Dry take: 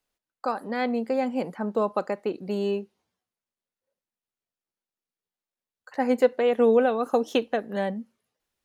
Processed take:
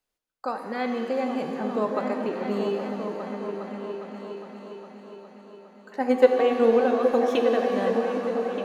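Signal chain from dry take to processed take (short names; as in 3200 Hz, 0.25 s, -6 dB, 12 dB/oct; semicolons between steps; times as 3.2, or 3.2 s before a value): 6–7.13 transient shaper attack +6 dB, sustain -5 dB; repeats that get brighter 0.409 s, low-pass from 200 Hz, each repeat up 2 oct, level -3 dB; shimmer reverb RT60 2.6 s, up +7 st, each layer -8 dB, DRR 4.5 dB; gain -2.5 dB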